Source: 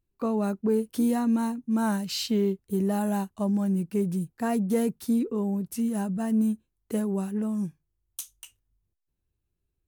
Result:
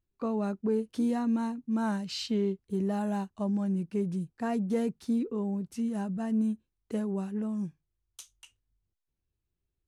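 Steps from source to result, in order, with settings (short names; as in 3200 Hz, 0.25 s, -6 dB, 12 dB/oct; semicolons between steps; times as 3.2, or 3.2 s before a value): LPF 6300 Hz 12 dB/oct; gain -4 dB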